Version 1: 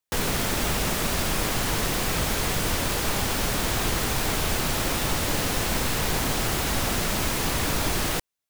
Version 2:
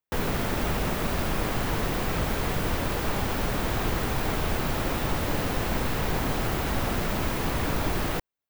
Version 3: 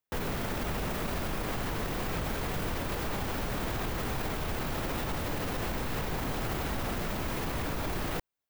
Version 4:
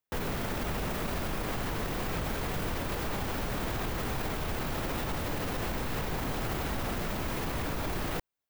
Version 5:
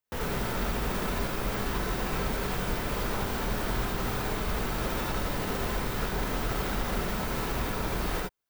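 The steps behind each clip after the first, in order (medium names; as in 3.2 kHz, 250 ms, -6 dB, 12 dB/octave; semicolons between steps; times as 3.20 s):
peaking EQ 7.9 kHz -11.5 dB 2.6 oct
peak limiter -24 dBFS, peak gain reduction 10 dB
no audible change
gated-style reverb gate 100 ms rising, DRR -2 dB; trim -1.5 dB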